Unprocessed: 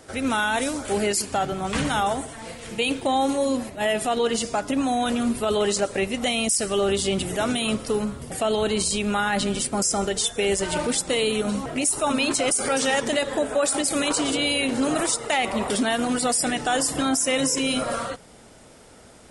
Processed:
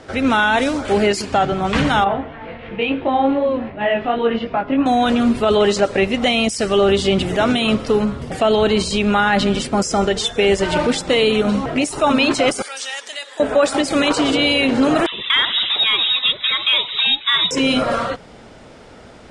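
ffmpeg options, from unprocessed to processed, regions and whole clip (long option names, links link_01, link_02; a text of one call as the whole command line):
ffmpeg -i in.wav -filter_complex "[0:a]asettb=1/sr,asplit=3[link_01][link_02][link_03];[link_01]atrim=end=2.044[link_04];[link_02]atrim=start=2.04:end=4.86,asetpts=PTS-STARTPTS,afade=type=in:duration=0.004:curve=qsin,afade=type=out:start_time=2.816:duration=0.004:curve=qsin,lowpass=frequency=2900:width=0.5412,lowpass=frequency=2900:width=1.3066,flanger=delay=20:depth=2.4:speed=2.8[link_05];[link_03]atrim=start=4.856[link_06];[link_04][link_05]acrossfade=duration=0.004:curve1=hsin:curve2=qsin[link_07];[link_07][link_06]acrossfade=duration=0.004:curve1=qsin:curve2=hsin,asettb=1/sr,asplit=3[link_08][link_09][link_10];[link_08]atrim=end=12.624[link_11];[link_09]atrim=start=12.62:end=13.4,asetpts=PTS-STARTPTS,afade=type=in:duration=0.004:curve=qsin,afade=type=out:start_time=0.776:duration=0.004:curve=qsin,highpass=370,aderivative[link_12];[link_10]atrim=start=13.396[link_13];[link_11][link_12]acrossfade=duration=0.004:curve1=hsin:curve2=qsin[link_14];[link_14][link_13]acrossfade=duration=0.004:curve1=qsin:curve2=hsin,asettb=1/sr,asplit=3[link_15][link_16][link_17];[link_15]atrim=end=15.064[link_18];[link_16]atrim=start=15.06:end=17.51,asetpts=PTS-STARTPTS,afade=type=in:duration=0.004:curve=qsin,afade=type=out:start_time=2.446:duration=0.004:curve=qsin,lowpass=frequency=3400:width_type=q:width=0.5098,lowpass=frequency=3400:width_type=q:width=0.6013,lowpass=frequency=3400:width_type=q:width=0.9,lowpass=frequency=3400:width_type=q:width=2.563,afreqshift=-4000,acrossover=split=870[link_19][link_20];[link_19]adelay=60[link_21];[link_21][link_20]amix=inputs=2:normalize=0,atrim=end_sample=108045[link_22];[link_17]atrim=start=17.506[link_23];[link_18][link_22]acrossfade=duration=0.004:curve1=hsin:curve2=qsin[link_24];[link_24][link_23]acrossfade=duration=0.004:curve1=qsin:curve2=hsin,lowpass=4100,acontrast=28,volume=3dB" out.wav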